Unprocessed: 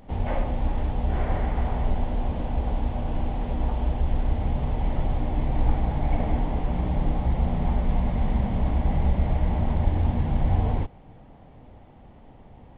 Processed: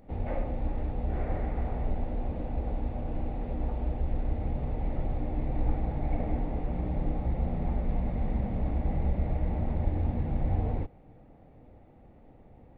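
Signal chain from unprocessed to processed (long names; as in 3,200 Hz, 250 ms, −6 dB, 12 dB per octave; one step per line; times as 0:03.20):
thirty-one-band graphic EQ 315 Hz +4 dB, 500 Hz +4 dB, 1,000 Hz −7 dB, 1,600 Hz −3 dB, 3,150 Hz −11 dB
level −6 dB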